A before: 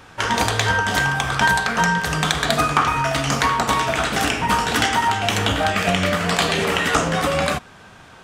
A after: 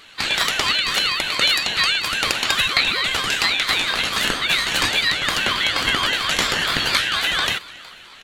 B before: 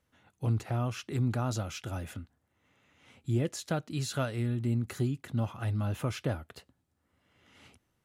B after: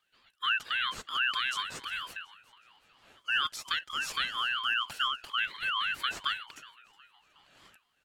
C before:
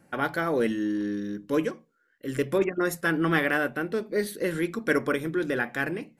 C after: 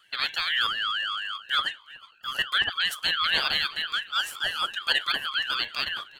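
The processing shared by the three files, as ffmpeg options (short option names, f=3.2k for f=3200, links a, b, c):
-filter_complex "[0:a]afftfilt=real='real(if(lt(b,920),b+92*(1-2*mod(floor(b/92),2)),b),0)':imag='imag(if(lt(b,920),b+92*(1-2*mod(floor(b/92),2)),b),0)':win_size=2048:overlap=0.75,asplit=5[a][b][c][d][e];[b]adelay=367,afreqshift=-70,volume=-21dB[f];[c]adelay=734,afreqshift=-140,volume=-27.2dB[g];[d]adelay=1101,afreqshift=-210,volume=-33.4dB[h];[e]adelay=1468,afreqshift=-280,volume=-39.6dB[i];[a][f][g][h][i]amix=inputs=5:normalize=0,aeval=exprs='val(0)*sin(2*PI*800*n/s+800*0.35/4.3*sin(2*PI*4.3*n/s))':c=same,volume=2dB"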